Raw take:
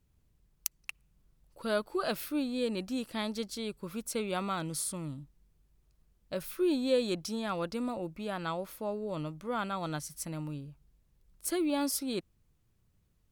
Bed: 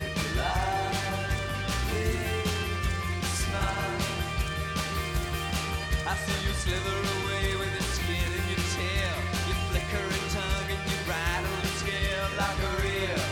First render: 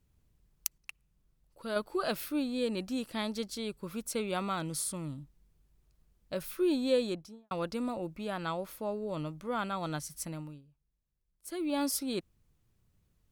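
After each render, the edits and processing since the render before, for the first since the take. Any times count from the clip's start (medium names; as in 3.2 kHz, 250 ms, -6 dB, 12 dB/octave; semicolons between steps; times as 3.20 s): 0.78–1.76 s: gain -4.5 dB; 6.94–7.51 s: studio fade out; 10.26–11.79 s: dip -16 dB, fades 0.37 s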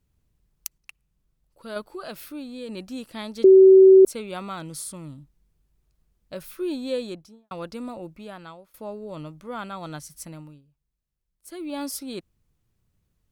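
1.84–2.69 s: compression 1.5:1, threshold -39 dBFS; 3.44–4.05 s: bleep 381 Hz -7.5 dBFS; 8.08–8.74 s: fade out, to -21.5 dB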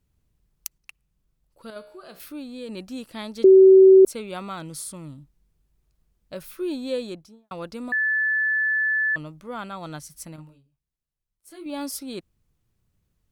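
1.70–2.20 s: feedback comb 62 Hz, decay 0.8 s, mix 70%; 7.92–9.16 s: bleep 1.74 kHz -19.5 dBFS; 10.36–11.66 s: detune thickener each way 19 cents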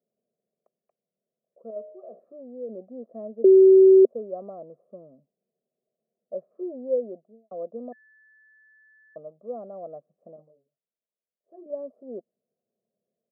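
elliptic band-pass 230–680 Hz, stop band 70 dB; comb 1.7 ms, depth 89%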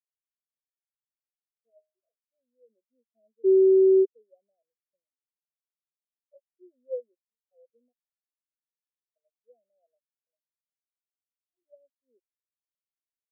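peak limiter -14 dBFS, peak gain reduction 4.5 dB; spectral contrast expander 2.5:1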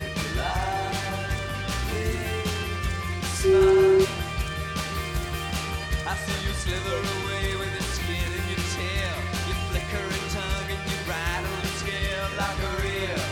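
add bed +1 dB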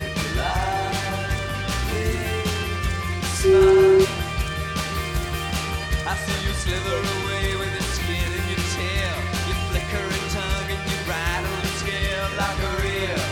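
trim +3.5 dB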